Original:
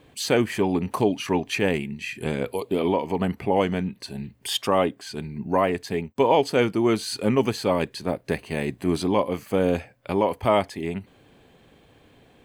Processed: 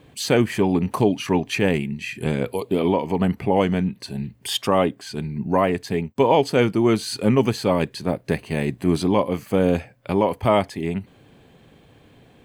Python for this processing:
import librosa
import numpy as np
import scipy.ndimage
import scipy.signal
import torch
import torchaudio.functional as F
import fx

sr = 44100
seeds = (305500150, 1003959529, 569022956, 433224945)

y = fx.peak_eq(x, sr, hz=140.0, db=5.0, octaves=1.5)
y = y * 10.0 ** (1.5 / 20.0)